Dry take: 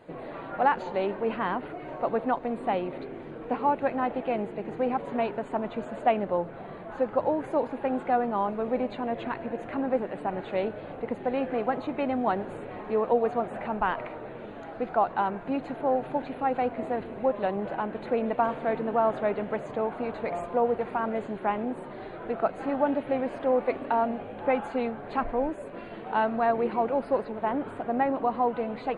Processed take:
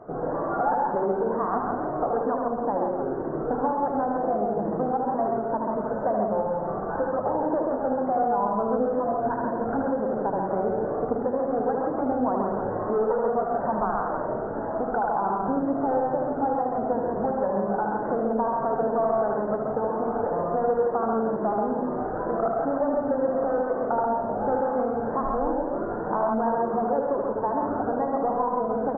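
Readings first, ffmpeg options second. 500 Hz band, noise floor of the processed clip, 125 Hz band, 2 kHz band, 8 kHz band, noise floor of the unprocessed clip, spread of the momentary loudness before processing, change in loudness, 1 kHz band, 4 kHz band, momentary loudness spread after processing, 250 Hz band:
+3.5 dB, -30 dBFS, +5.0 dB, -3.0 dB, no reading, -41 dBFS, 9 LU, +3.0 dB, +3.0 dB, under -35 dB, 3 LU, +3.5 dB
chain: -filter_complex "[0:a]afftfilt=real='re*pow(10,9/40*sin(2*PI*(1.2*log(max(b,1)*sr/1024/100)/log(2)-(2.1)*(pts-256)/sr)))':imag='im*pow(10,9/40*sin(2*PI*(1.2*log(max(b,1)*sr/1024/100)/log(2)-(2.1)*(pts-256)/sr)))':win_size=1024:overlap=0.75,asoftclip=type=hard:threshold=0.0944,equalizer=f=790:w=1.5:g=2,asplit=2[s0][s1];[s1]aecho=0:1:170:0.376[s2];[s0][s2]amix=inputs=2:normalize=0,acompressor=threshold=0.0251:ratio=5,asuperstop=centerf=3800:order=12:qfactor=0.52,bandreject=f=60:t=h:w=6,bandreject=f=120:t=h:w=6,bandreject=f=180:t=h:w=6,bandreject=f=240:t=h:w=6,bandreject=f=300:t=h:w=6,bandreject=f=360:t=h:w=6,asplit=2[s3][s4];[s4]aecho=0:1:75.8|134.1:0.631|0.708[s5];[s3][s5]amix=inputs=2:normalize=0,volume=2.37" -ar 16000 -c:a libmp3lame -b:a 32k

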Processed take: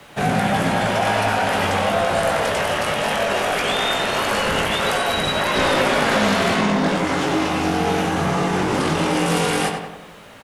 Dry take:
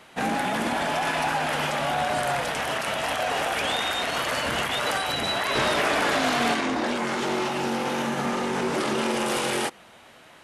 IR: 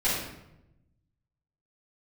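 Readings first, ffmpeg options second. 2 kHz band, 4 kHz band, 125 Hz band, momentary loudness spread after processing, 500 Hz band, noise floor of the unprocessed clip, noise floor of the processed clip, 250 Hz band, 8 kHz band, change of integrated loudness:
+5.0 dB, +4.5 dB, +11.5 dB, 3 LU, +7.0 dB, -51 dBFS, -40 dBFS, +7.5 dB, +4.0 dB, +5.5 dB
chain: -filter_complex "[0:a]asplit=2[s0][s1];[s1]alimiter=limit=0.0841:level=0:latency=1,volume=0.75[s2];[s0][s2]amix=inputs=2:normalize=0,lowshelf=f=350:g=8.5,bandreject=f=390:w=12,asplit=2[s3][s4];[s4]adelay=19,volume=0.447[s5];[s3][s5]amix=inputs=2:normalize=0,bandreject=f=75.79:t=h:w=4,bandreject=f=151.58:t=h:w=4,bandreject=f=227.37:t=h:w=4,bandreject=f=303.16:t=h:w=4,bandreject=f=378.95:t=h:w=4,bandreject=f=454.74:t=h:w=4,bandreject=f=530.53:t=h:w=4,bandreject=f=606.32:t=h:w=4,bandreject=f=682.11:t=h:w=4,bandreject=f=757.9:t=h:w=4,bandreject=f=833.69:t=h:w=4,bandreject=f=909.48:t=h:w=4,bandreject=f=985.27:t=h:w=4,bandreject=f=1061.06:t=h:w=4,bandreject=f=1136.85:t=h:w=4,bandreject=f=1212.64:t=h:w=4,bandreject=f=1288.43:t=h:w=4,bandreject=f=1364.22:t=h:w=4,bandreject=f=1440.01:t=h:w=4,bandreject=f=1515.8:t=h:w=4,bandreject=f=1591.59:t=h:w=4,bandreject=f=1667.38:t=h:w=4,bandreject=f=1743.17:t=h:w=4,bandreject=f=1818.96:t=h:w=4,bandreject=f=1894.75:t=h:w=4,bandreject=f=1970.54:t=h:w=4,bandreject=f=2046.33:t=h:w=4,bandreject=f=2122.12:t=h:w=4,bandreject=f=2197.91:t=h:w=4,bandreject=f=2273.7:t=h:w=4,bandreject=f=2349.49:t=h:w=4,bandreject=f=2425.28:t=h:w=4,bandreject=f=2501.07:t=h:w=4,bandreject=f=2576.86:t=h:w=4,bandreject=f=2652.65:t=h:w=4,acrusher=bits=8:mix=0:aa=0.5,afreqshift=-54,lowshelf=f=130:g=-7.5,asplit=2[s6][s7];[s7]adelay=94,lowpass=f=3400:p=1,volume=0.562,asplit=2[s8][s9];[s9]adelay=94,lowpass=f=3400:p=1,volume=0.54,asplit=2[s10][s11];[s11]adelay=94,lowpass=f=3400:p=1,volume=0.54,asplit=2[s12][s13];[s13]adelay=94,lowpass=f=3400:p=1,volume=0.54,asplit=2[s14][s15];[s15]adelay=94,lowpass=f=3400:p=1,volume=0.54,asplit=2[s16][s17];[s17]adelay=94,lowpass=f=3400:p=1,volume=0.54,asplit=2[s18][s19];[s19]adelay=94,lowpass=f=3400:p=1,volume=0.54[s20];[s8][s10][s12][s14][s16][s18][s20]amix=inputs=7:normalize=0[s21];[s6][s21]amix=inputs=2:normalize=0"

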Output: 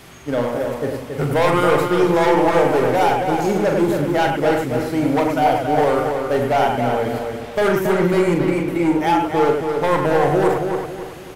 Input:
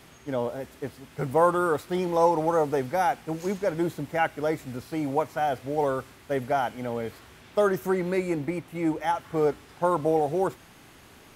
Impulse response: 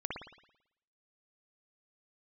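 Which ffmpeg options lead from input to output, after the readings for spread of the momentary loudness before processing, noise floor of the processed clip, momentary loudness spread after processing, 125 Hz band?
10 LU, -33 dBFS, 8 LU, +10.5 dB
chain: -filter_complex "[0:a]asoftclip=type=hard:threshold=0.0708,asplit=2[s0][s1];[s1]adelay=276,lowpass=f=3400:p=1,volume=0.562,asplit=2[s2][s3];[s3]adelay=276,lowpass=f=3400:p=1,volume=0.38,asplit=2[s4][s5];[s5]adelay=276,lowpass=f=3400:p=1,volume=0.38,asplit=2[s6][s7];[s7]adelay=276,lowpass=f=3400:p=1,volume=0.38,asplit=2[s8][s9];[s9]adelay=276,lowpass=f=3400:p=1,volume=0.38[s10];[s0][s2][s4][s6][s8][s10]amix=inputs=6:normalize=0,asplit=2[s11][s12];[1:a]atrim=start_sample=2205,atrim=end_sample=3528,adelay=41[s13];[s12][s13]afir=irnorm=-1:irlink=0,volume=0.631[s14];[s11][s14]amix=inputs=2:normalize=0,volume=2.66"

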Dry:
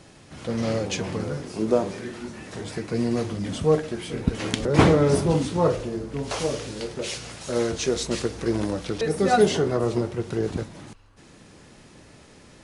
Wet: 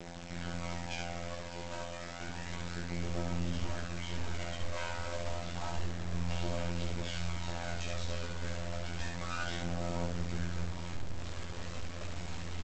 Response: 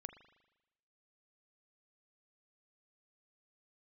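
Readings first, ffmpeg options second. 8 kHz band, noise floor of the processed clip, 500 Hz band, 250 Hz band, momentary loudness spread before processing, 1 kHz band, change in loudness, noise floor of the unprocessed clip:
-11.5 dB, -43 dBFS, -19.5 dB, -16.5 dB, 14 LU, -13.0 dB, -14.5 dB, -50 dBFS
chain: -af "afftfilt=real='re*lt(hypot(re,im),0.398)':imag='im*lt(hypot(re,im),0.398)':win_size=1024:overlap=0.75,lowpass=2900,highshelf=f=2100:g=2.5,aecho=1:1:3.2:0.41,asubboost=boost=6:cutoff=83,alimiter=limit=0.126:level=0:latency=1:release=263,acompressor=threshold=0.00891:ratio=3,aeval=exprs='val(0)*sin(2*PI*28*n/s)':c=same,afftfilt=real='hypot(re,im)*cos(PI*b)':imag='0':win_size=2048:overlap=0.75,aphaser=in_gain=1:out_gain=1:delay=2.1:decay=0.56:speed=0.3:type=triangular,aresample=16000,acrusher=bits=5:dc=4:mix=0:aa=0.000001,aresample=44100,aecho=1:1:17|71:0.473|0.708,volume=1.68"

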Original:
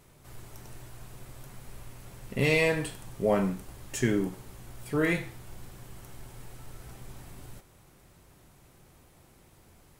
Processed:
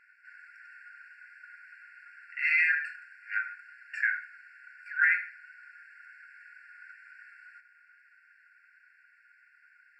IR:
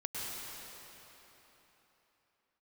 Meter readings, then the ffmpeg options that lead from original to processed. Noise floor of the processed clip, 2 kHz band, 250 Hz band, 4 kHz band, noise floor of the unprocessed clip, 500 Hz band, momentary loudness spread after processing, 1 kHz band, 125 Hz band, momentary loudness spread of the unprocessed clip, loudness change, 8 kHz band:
-63 dBFS, +7.0 dB, under -40 dB, under -10 dB, -59 dBFS, under -40 dB, 19 LU, -1.5 dB, under -40 dB, 22 LU, +0.5 dB, under -25 dB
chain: -af "lowpass=f=1200:t=q:w=4.3,acontrast=38,afftfilt=real='re*eq(mod(floor(b*sr/1024/1400),2),1)':imag='im*eq(mod(floor(b*sr/1024/1400),2),1)':win_size=1024:overlap=0.75,volume=2"

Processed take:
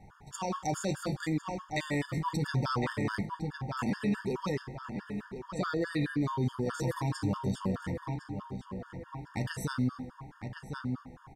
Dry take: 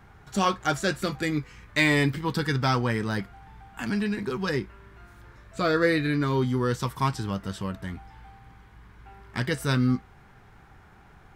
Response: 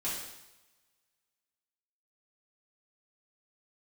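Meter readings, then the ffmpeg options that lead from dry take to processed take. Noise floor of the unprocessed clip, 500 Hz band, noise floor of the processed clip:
-53 dBFS, -7.5 dB, -55 dBFS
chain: -filter_complex "[0:a]lowpass=12000,equalizer=f=2700:t=o:w=2.3:g=-5.5,bandreject=f=60:t=h:w=6,bandreject=f=120:t=h:w=6,asplit=2[s0][s1];[s1]adelay=1056,lowpass=f=3200:p=1,volume=0.335,asplit=2[s2][s3];[s3]adelay=1056,lowpass=f=3200:p=1,volume=0.46,asplit=2[s4][s5];[s5]adelay=1056,lowpass=f=3200:p=1,volume=0.46,asplit=2[s6][s7];[s7]adelay=1056,lowpass=f=3200:p=1,volume=0.46,asplit=2[s8][s9];[s9]adelay=1056,lowpass=f=3200:p=1,volume=0.46[s10];[s0][s2][s4][s6][s8][s10]amix=inputs=6:normalize=0,asplit=2[s11][s12];[1:a]atrim=start_sample=2205[s13];[s12][s13]afir=irnorm=-1:irlink=0,volume=0.15[s14];[s11][s14]amix=inputs=2:normalize=0,alimiter=limit=0.0944:level=0:latency=1:release=19,equalizer=f=400:t=o:w=0.67:g=-3,equalizer=f=1000:t=o:w=0.67:g=4,equalizer=f=6300:t=o:w=0.67:g=3,afftfilt=real='re*gt(sin(2*PI*4.7*pts/sr)*(1-2*mod(floor(b*sr/1024/910),2)),0)':imag='im*gt(sin(2*PI*4.7*pts/sr)*(1-2*mod(floor(b*sr/1024/910),2)),0)':win_size=1024:overlap=0.75"

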